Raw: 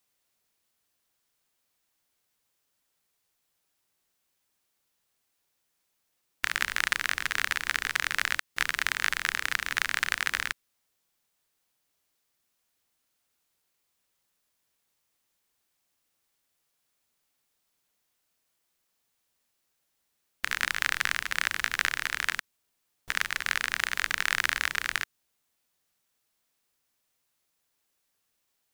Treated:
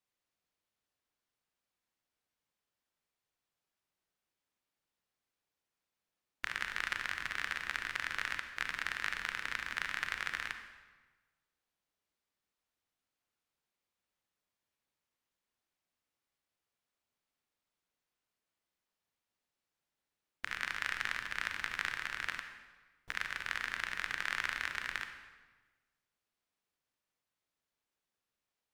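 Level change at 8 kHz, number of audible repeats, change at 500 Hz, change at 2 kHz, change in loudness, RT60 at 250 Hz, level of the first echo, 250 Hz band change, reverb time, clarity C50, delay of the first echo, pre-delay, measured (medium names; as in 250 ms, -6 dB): -15.0 dB, no echo, -7.5 dB, -8.5 dB, -9.0 dB, 1.4 s, no echo, -6.5 dB, 1.3 s, 7.5 dB, no echo, 35 ms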